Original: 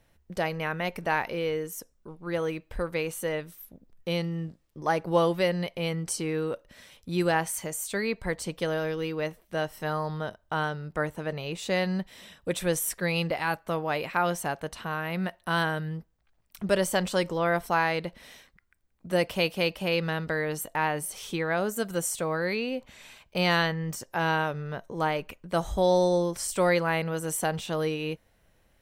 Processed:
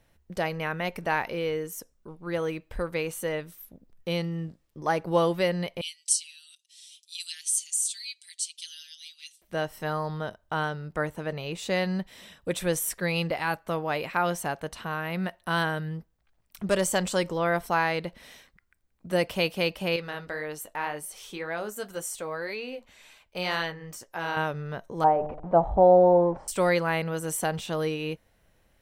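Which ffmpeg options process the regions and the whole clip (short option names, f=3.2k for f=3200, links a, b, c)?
-filter_complex "[0:a]asettb=1/sr,asplit=3[a][b][c];[a]atrim=end=5.814[d];[b]atrim=start=5.81:end=9.42,asetpts=PTS-STARTPTS,afade=t=in:d=0.004:c=qsin,afade=t=out:st=3.606:d=0.004:c=qsin,asuperpass=centerf=5800:order=8:qfactor=0.83,highshelf=f=6.5k:g=10,aecho=1:1:5.7:0.85,atrim=end_sample=159201[e];[c]atrim=start=9.416[f];[d][e]acrossfade=d=0.004:c1=hsin:c2=qsin[g];[g][f]acrossfade=d=0.004:c1=qsin:c2=hsin,asettb=1/sr,asplit=3[h][i][j];[h]atrim=end=16.694[k];[i]atrim=start=16.69:end=17.17,asetpts=PTS-STARTPTS,afade=t=in:d=0.004:c=qsin,afade=t=out:st=0.476:d=0.004:c=qsin,aeval=exprs='clip(val(0),-1,0.112)':c=same,equalizer=f=7.4k:t=o:w=0.48:g=7[l];[j]atrim=start=17.166[m];[k][l]acrossfade=d=0.004:c1=hsin:c2=qsin[n];[n][m]acrossfade=d=0.004:c1=qsin:c2=hsin,asettb=1/sr,asplit=3[o][p][q];[o]atrim=end=19.964[r];[p]atrim=start=19.96:end=24.37,asetpts=PTS-STARTPTS,afade=t=in:d=0.004:c=qsin,afade=t=out:st=4.406:d=0.004:c=qsin,equalizer=f=140:w=0.7:g=-7.5,flanger=delay=6.4:depth=4.6:regen=-50:speed=1.9:shape=sinusoidal[s];[q]atrim=start=24.366[t];[r][s]acrossfade=d=0.004:c1=hsin:c2=qsin[u];[u][t]acrossfade=d=0.004:c1=qsin:c2=hsin,asettb=1/sr,asplit=3[v][w][x];[v]atrim=end=25.044[y];[w]atrim=start=25.04:end=26.48,asetpts=PTS-STARTPTS,afade=t=in:d=0.004:c=qsin,afade=t=out:st=1.436:d=0.004:c=qsin,aeval=exprs='val(0)+0.5*0.015*sgn(val(0))':c=same,lowpass=f=780:t=q:w=3.3,bandreject=f=150.7:t=h:w=4,bandreject=f=301.4:t=h:w=4,bandreject=f=452.1:t=h:w=4,bandreject=f=602.8:t=h:w=4,bandreject=f=753.5:t=h:w=4,bandreject=f=904.2:t=h:w=4[z];[x]atrim=start=26.476[aa];[y][z]acrossfade=d=0.004:c1=hsin:c2=qsin[ab];[ab][aa]acrossfade=d=0.004:c1=qsin:c2=hsin"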